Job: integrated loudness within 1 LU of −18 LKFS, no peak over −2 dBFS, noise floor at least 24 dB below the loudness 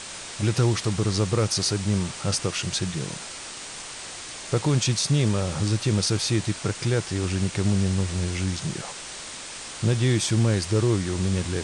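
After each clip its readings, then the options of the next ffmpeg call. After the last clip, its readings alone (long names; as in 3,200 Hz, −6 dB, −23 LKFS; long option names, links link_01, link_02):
background noise floor −38 dBFS; target noise floor −50 dBFS; integrated loudness −25.5 LKFS; sample peak −12.5 dBFS; target loudness −18.0 LKFS
→ -af "afftdn=noise_reduction=12:noise_floor=-38"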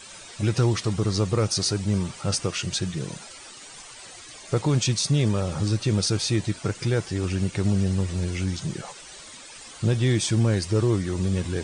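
background noise floor −44 dBFS; target noise floor −49 dBFS
→ -af "afftdn=noise_reduction=6:noise_floor=-44"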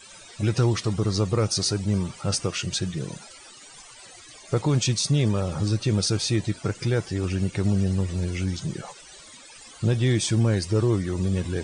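background noise floor −47 dBFS; target noise floor −49 dBFS
→ -af "afftdn=noise_reduction=6:noise_floor=-47"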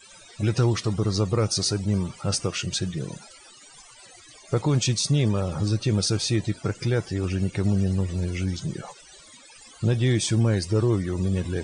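background noise floor −50 dBFS; integrated loudness −25.0 LKFS; sample peak −13.0 dBFS; target loudness −18.0 LKFS
→ -af "volume=7dB"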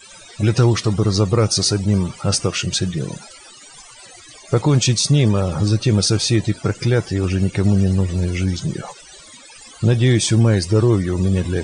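integrated loudness −18.0 LKFS; sample peak −6.0 dBFS; background noise floor −43 dBFS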